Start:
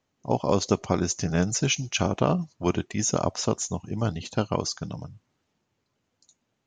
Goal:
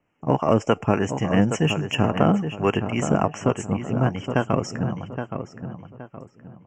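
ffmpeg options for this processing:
-filter_complex "[0:a]highshelf=f=4.2k:t=q:w=1.5:g=-12.5,asetrate=49501,aresample=44100,atempo=0.890899,acrossover=split=520[a][b];[a]aeval=exprs='val(0)*(1-0.5/2+0.5/2*cos(2*PI*3.5*n/s))':c=same[c];[b]aeval=exprs='val(0)*(1-0.5/2-0.5/2*cos(2*PI*3.5*n/s))':c=same[d];[c][d]amix=inputs=2:normalize=0,asplit=2[e][f];[f]asoftclip=type=hard:threshold=-27.5dB,volume=-9.5dB[g];[e][g]amix=inputs=2:normalize=0,asuperstop=centerf=4000:order=12:qfactor=1.8,asplit=2[h][i];[i]adelay=820,lowpass=f=2.3k:p=1,volume=-8dB,asplit=2[j][k];[k]adelay=820,lowpass=f=2.3k:p=1,volume=0.34,asplit=2[l][m];[m]adelay=820,lowpass=f=2.3k:p=1,volume=0.34,asplit=2[n][o];[o]adelay=820,lowpass=f=2.3k:p=1,volume=0.34[p];[h][j][l][n][p]amix=inputs=5:normalize=0,volume=5dB"

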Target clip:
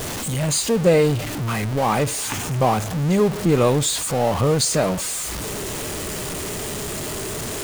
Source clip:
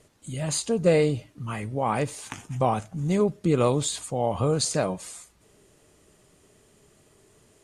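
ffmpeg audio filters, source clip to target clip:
-af "aeval=exprs='val(0)+0.5*0.0531*sgn(val(0))':c=same,volume=3dB"

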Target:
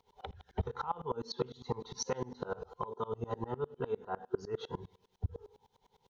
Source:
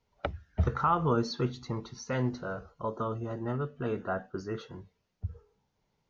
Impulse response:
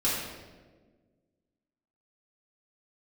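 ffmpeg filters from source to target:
-af "superequalizer=6b=0.631:7b=3.16:9b=3.55:13b=2.24,acompressor=threshold=-37dB:ratio=8,highshelf=f=3.4k:g=4,aecho=1:1:81|162|243|324:0.075|0.0405|0.0219|0.0118,aeval=exprs='val(0)*pow(10,-26*if(lt(mod(-9.9*n/s,1),2*abs(-9.9)/1000),1-mod(-9.9*n/s,1)/(2*abs(-9.9)/1000),(mod(-9.9*n/s,1)-2*abs(-9.9)/1000)/(1-2*abs(-9.9)/1000))/20)':c=same,volume=9.5dB"

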